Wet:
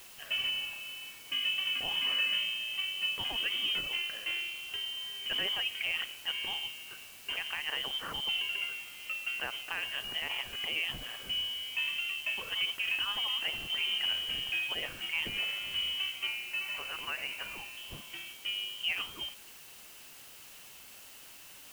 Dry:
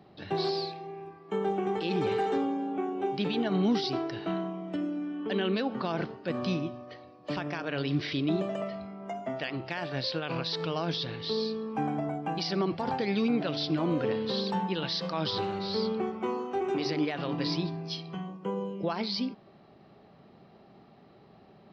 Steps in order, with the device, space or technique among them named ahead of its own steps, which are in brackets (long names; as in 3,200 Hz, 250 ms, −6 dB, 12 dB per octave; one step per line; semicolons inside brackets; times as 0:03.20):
0:16.27–0:17.77: high-pass filter 500 Hz 24 dB per octave
scrambled radio voice (band-pass filter 400–2,700 Hz; voice inversion scrambler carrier 3,400 Hz; white noise bed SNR 16 dB)